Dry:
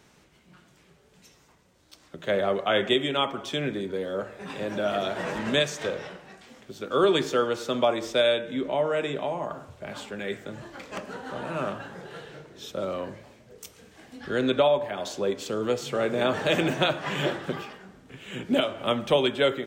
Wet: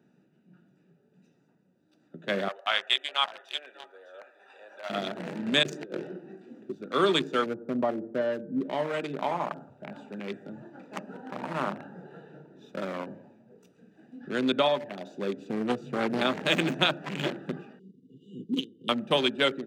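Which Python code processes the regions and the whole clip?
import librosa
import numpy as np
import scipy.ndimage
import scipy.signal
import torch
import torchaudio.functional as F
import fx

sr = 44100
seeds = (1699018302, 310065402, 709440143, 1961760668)

y = fx.chain(x, sr, fx.highpass(hz=700.0, slope=24),
    fx.echo_single(ms=604, db=-10.5), at=(2.48, 4.9))
y = fx.chain(y, sr, fx.peak_eq(hz=350.0, db=14.5, octaves=0.48),
    fx.over_compress(threshold_db=-29.0, ratio=-0.5), at=(5.63, 6.75))
y = fx.chain(y, sr, fx.bessel_lowpass(hz=830.0, order=4),
    fx.low_shelf(hz=130.0, db=9.0), at=(7.46, 8.61))
y = fx.chain(y, sr, fx.peak_eq(hz=910.0, db=8.0, octaves=0.72),
    fx.clip_hard(threshold_db=-16.0),
    fx.echo_single(ms=169, db=-16.5), at=(9.12, 13.64))
y = fx.chain(y, sr, fx.highpass(hz=59.0, slope=24),
    fx.low_shelf(hz=180.0, db=6.5),
    fx.doppler_dist(depth_ms=0.35), at=(15.36, 16.22))
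y = fx.chain(y, sr, fx.transient(attack_db=-5, sustain_db=-10),
    fx.brickwall_bandstop(low_hz=510.0, high_hz=2800.0), at=(17.79, 18.89))
y = fx.wiener(y, sr, points=41)
y = scipy.signal.sosfilt(scipy.signal.butter(4, 170.0, 'highpass', fs=sr, output='sos'), y)
y = fx.peak_eq(y, sr, hz=500.0, db=-8.5, octaves=1.4)
y = y * librosa.db_to_amplitude(3.5)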